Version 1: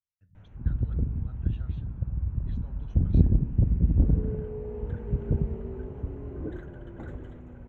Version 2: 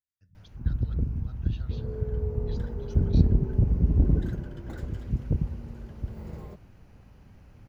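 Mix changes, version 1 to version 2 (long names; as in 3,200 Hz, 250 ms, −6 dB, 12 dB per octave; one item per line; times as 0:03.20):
second sound: entry −2.30 s
master: remove moving average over 9 samples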